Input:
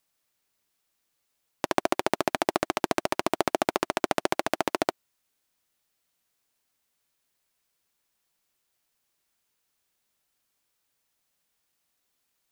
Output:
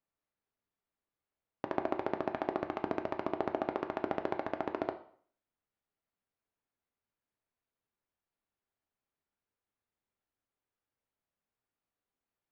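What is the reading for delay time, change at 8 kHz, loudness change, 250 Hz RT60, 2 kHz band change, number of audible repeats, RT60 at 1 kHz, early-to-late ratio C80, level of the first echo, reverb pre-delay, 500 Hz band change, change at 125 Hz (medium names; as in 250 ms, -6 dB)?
no echo, under -30 dB, -8.5 dB, 0.55 s, -12.5 dB, no echo, 0.55 s, 16.5 dB, no echo, 4 ms, -7.0 dB, -6.0 dB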